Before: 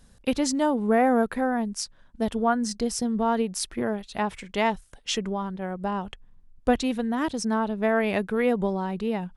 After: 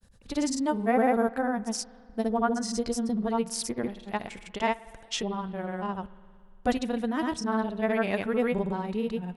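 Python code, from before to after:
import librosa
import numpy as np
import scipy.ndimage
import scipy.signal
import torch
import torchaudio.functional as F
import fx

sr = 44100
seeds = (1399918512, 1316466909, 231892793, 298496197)

y = fx.granulator(x, sr, seeds[0], grain_ms=100.0, per_s=20.0, spray_ms=100.0, spread_st=0)
y = fx.rev_spring(y, sr, rt60_s=2.2, pass_ms=(57,), chirp_ms=30, drr_db=18.5)
y = F.gain(torch.from_numpy(y), -1.5).numpy()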